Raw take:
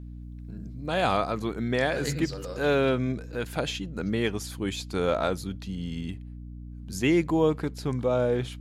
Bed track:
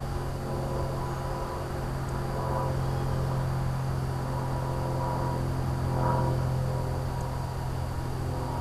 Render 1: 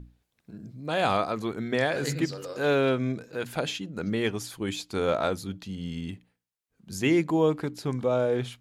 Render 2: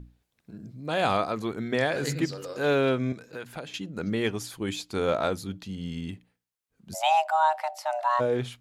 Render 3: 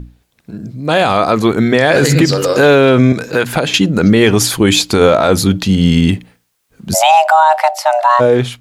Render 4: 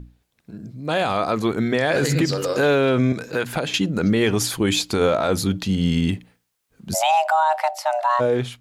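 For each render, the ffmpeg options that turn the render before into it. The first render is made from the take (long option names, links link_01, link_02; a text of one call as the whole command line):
ffmpeg -i in.wav -af "bandreject=frequency=60:width_type=h:width=6,bandreject=frequency=120:width_type=h:width=6,bandreject=frequency=180:width_type=h:width=6,bandreject=frequency=240:width_type=h:width=6,bandreject=frequency=300:width_type=h:width=6" out.wav
ffmpeg -i in.wav -filter_complex "[0:a]asettb=1/sr,asplit=3[link_01][link_02][link_03];[link_01]atrim=end=3.124[link_04];[link_02]atrim=start=3.12:end=3.74,asetpts=PTS-STARTPTS,afade=type=in:duration=0.004:curve=qsin,afade=type=out:start_time=0.616:duration=0.004:curve=qsin,acrossover=split=820|1900[link_05][link_06][link_07];[link_05]acompressor=threshold=-39dB:ratio=4[link_08];[link_06]acompressor=threshold=-43dB:ratio=4[link_09];[link_07]acompressor=threshold=-49dB:ratio=4[link_10];[link_08][link_09][link_10]amix=inputs=3:normalize=0[link_11];[link_03]atrim=start=3.736[link_12];[link_04][link_11]acrossfade=duration=0.004:curve1=hsin:curve2=qsin[link_13];[link_13][link_12]acrossfade=duration=0.004:curve1=qsin:curve2=hsin,asplit=3[link_14][link_15][link_16];[link_14]afade=type=out:start_time=6.93:duration=0.02[link_17];[link_15]afreqshift=470,afade=type=in:start_time=6.93:duration=0.02,afade=type=out:start_time=8.19:duration=0.02[link_18];[link_16]afade=type=in:start_time=8.19:duration=0.02[link_19];[link_17][link_18][link_19]amix=inputs=3:normalize=0" out.wav
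ffmpeg -i in.wav -af "dynaudnorm=framelen=360:gausssize=9:maxgain=10dB,alimiter=level_in=15.5dB:limit=-1dB:release=50:level=0:latency=1" out.wav
ffmpeg -i in.wav -af "volume=-9.5dB" out.wav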